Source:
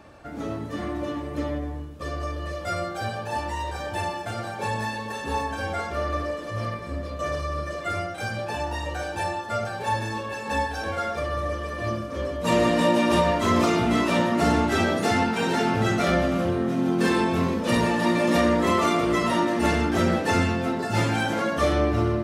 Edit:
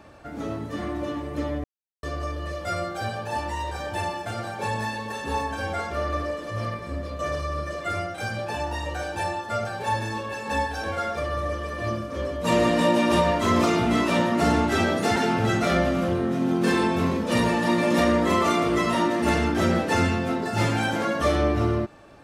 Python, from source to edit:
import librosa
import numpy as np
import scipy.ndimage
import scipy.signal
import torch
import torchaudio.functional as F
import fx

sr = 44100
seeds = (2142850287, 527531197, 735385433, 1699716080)

y = fx.edit(x, sr, fx.silence(start_s=1.64, length_s=0.39),
    fx.cut(start_s=15.16, length_s=0.37), tone=tone)